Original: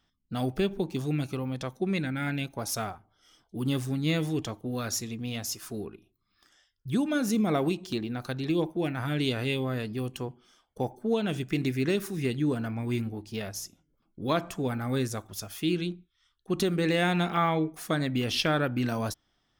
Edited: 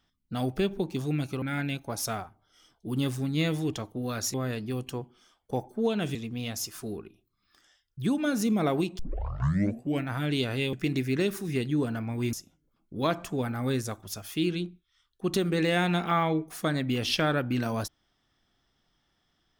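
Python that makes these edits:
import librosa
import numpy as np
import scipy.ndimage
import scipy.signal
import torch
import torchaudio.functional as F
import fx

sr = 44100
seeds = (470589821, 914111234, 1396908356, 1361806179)

y = fx.edit(x, sr, fx.cut(start_s=1.42, length_s=0.69),
    fx.tape_start(start_s=7.87, length_s=1.07),
    fx.move(start_s=9.61, length_s=1.81, to_s=5.03),
    fx.cut(start_s=13.02, length_s=0.57), tone=tone)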